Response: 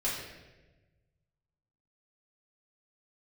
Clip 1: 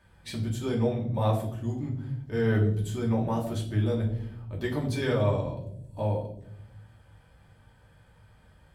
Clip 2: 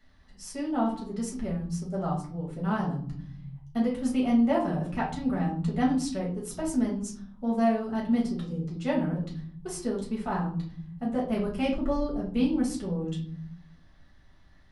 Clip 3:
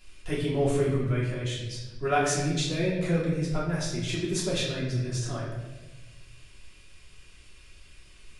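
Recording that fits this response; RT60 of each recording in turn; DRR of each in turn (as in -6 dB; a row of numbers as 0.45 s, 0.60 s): 3; 0.75 s, 0.50 s, 1.2 s; -3.0 dB, -5.0 dB, -8.0 dB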